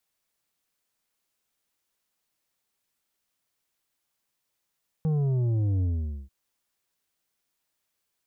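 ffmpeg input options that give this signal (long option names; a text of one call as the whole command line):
ffmpeg -f lavfi -i "aevalsrc='0.0708*clip((1.24-t)/0.47,0,1)*tanh(2.37*sin(2*PI*160*1.24/log(65/160)*(exp(log(65/160)*t/1.24)-1)))/tanh(2.37)':duration=1.24:sample_rate=44100" out.wav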